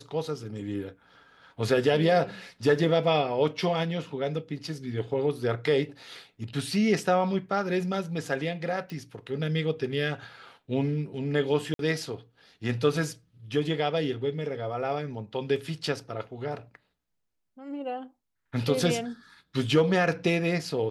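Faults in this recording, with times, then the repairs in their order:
0:08.90: click
0:11.74–0:11.79: drop-out 52 ms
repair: click removal
repair the gap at 0:11.74, 52 ms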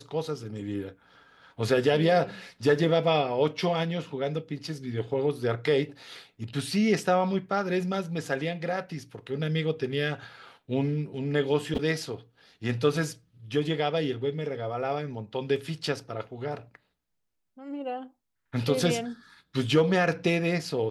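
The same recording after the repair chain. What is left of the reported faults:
none of them is left

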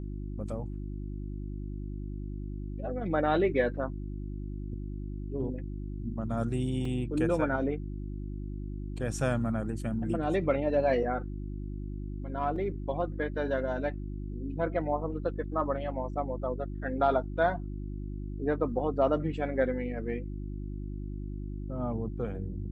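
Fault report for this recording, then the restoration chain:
mains hum 50 Hz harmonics 7 −37 dBFS
0:06.85: drop-out 3.4 ms
0:12.56: drop-out 3.1 ms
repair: hum removal 50 Hz, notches 7
repair the gap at 0:06.85, 3.4 ms
repair the gap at 0:12.56, 3.1 ms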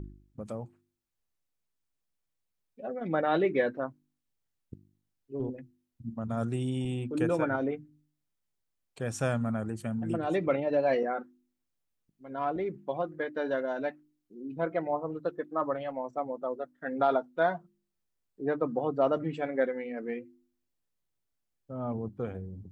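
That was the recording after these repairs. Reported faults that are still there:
none of them is left

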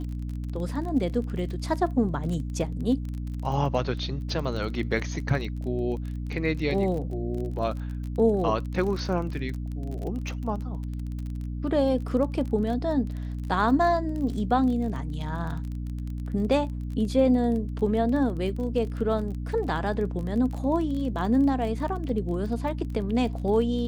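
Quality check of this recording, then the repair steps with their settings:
surface crackle 28 per second −33 dBFS
mains hum 60 Hz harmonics 5 −32 dBFS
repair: click removal
hum removal 60 Hz, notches 5

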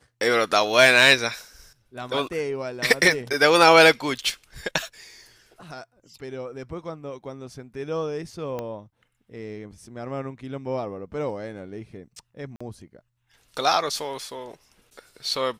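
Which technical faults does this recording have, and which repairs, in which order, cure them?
0:08.59: click −18 dBFS
0:12.56–0:12.61: drop-out 45 ms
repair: click removal
repair the gap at 0:12.56, 45 ms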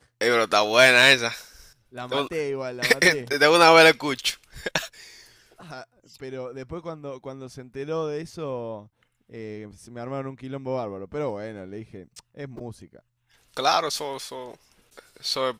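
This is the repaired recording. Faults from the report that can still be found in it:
0:08.59: click

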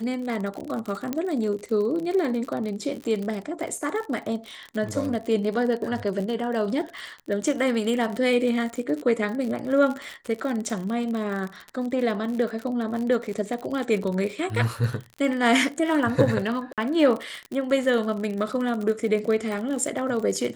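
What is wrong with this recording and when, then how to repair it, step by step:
surface crackle 50 per second −29 dBFS
0:01.13: click −13 dBFS
0:16.73–0:16.78: drop-out 47 ms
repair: click removal
repair the gap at 0:16.73, 47 ms

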